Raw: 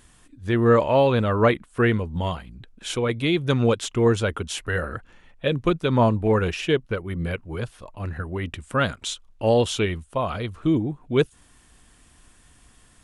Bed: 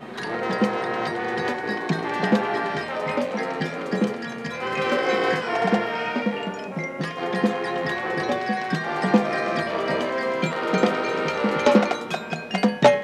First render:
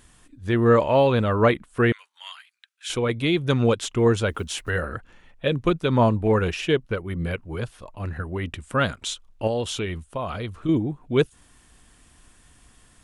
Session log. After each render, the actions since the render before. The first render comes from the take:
0:01.92–0:02.90: high-pass filter 1,500 Hz 24 dB per octave
0:04.30–0:04.70: one scale factor per block 7 bits
0:09.47–0:10.69: downward compressor 2 to 1, threshold −27 dBFS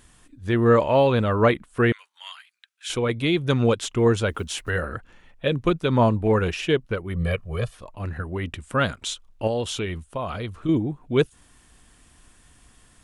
0:07.14–0:07.75: comb filter 1.7 ms, depth 90%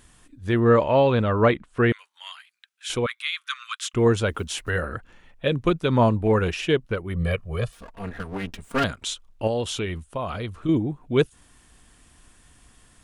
0:00.59–0:01.91: high-frequency loss of the air 69 metres
0:03.06–0:03.94: Butterworth high-pass 1,100 Hz 96 dB per octave
0:07.72–0:08.84: lower of the sound and its delayed copy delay 4.3 ms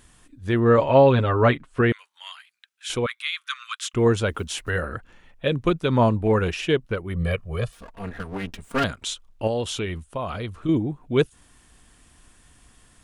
0:00.77–0:01.81: comb filter 7.4 ms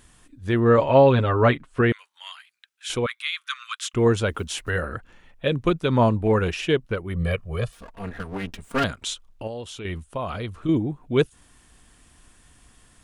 0:09.43–0:09.85: clip gain −8.5 dB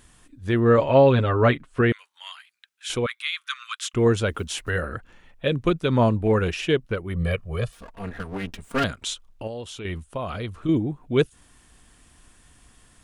dynamic equaliser 920 Hz, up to −3 dB, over −39 dBFS, Q 2.3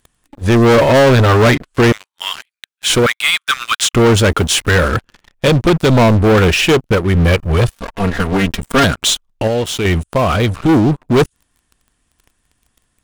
leveller curve on the samples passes 5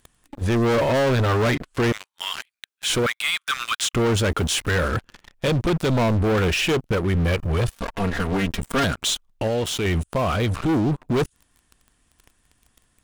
brickwall limiter −17 dBFS, peak gain reduction 11 dB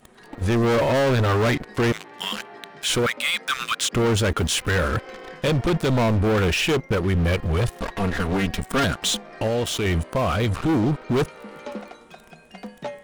mix in bed −17.5 dB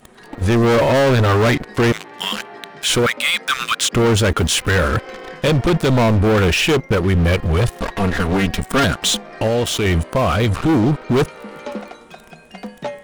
level +5.5 dB

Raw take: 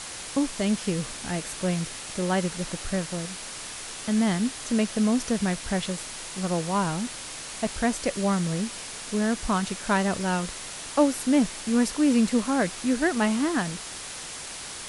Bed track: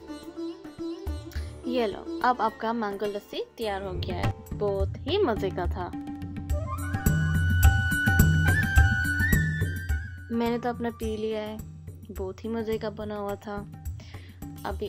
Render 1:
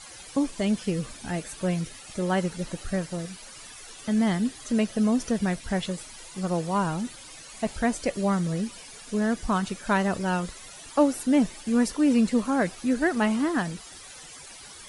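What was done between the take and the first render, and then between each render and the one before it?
broadband denoise 13 dB, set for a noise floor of −38 dBFS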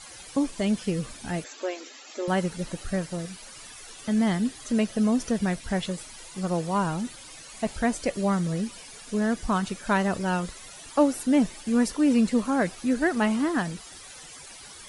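0:01.44–0:02.28: linear-phase brick-wall band-pass 240–7,700 Hz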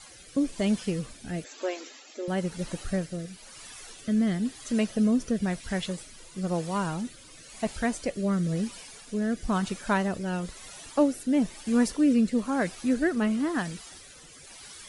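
rotating-speaker cabinet horn 1 Hz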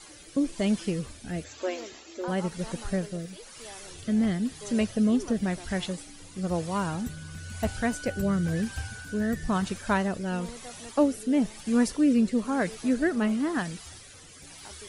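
mix in bed track −16.5 dB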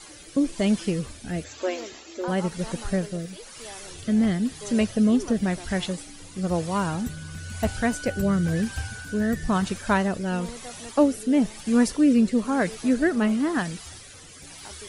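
level +3.5 dB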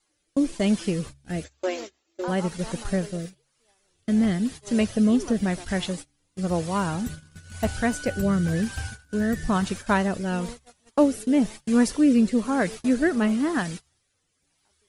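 noise gate −34 dBFS, range −28 dB
hum removal 68.88 Hz, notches 2

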